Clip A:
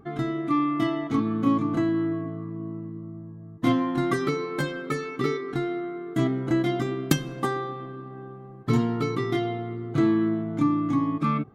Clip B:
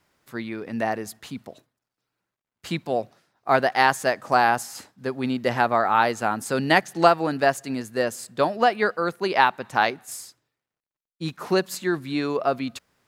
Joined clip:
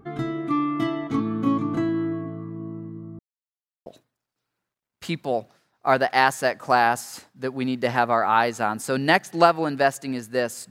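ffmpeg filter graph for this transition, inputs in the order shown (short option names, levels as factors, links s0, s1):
-filter_complex "[0:a]apad=whole_dur=10.7,atrim=end=10.7,asplit=2[s0][s1];[s0]atrim=end=3.19,asetpts=PTS-STARTPTS,afade=t=out:st=3.186:d=0.004:c=hsin[s2];[s1]atrim=start=3.19:end=3.86,asetpts=PTS-STARTPTS,volume=0[s3];[1:a]atrim=start=1.48:end=8.32,asetpts=PTS-STARTPTS,afade=t=in:d=0.004:c=hsin[s4];[s2][s3][s4]concat=n=3:v=0:a=1"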